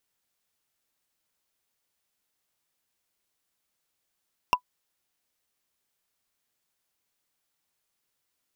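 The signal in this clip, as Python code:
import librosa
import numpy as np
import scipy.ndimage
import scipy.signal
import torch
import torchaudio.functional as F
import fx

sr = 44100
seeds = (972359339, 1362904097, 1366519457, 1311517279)

y = fx.strike_wood(sr, length_s=0.45, level_db=-11.5, body='bar', hz=993.0, decay_s=0.08, tilt_db=5.0, modes=5)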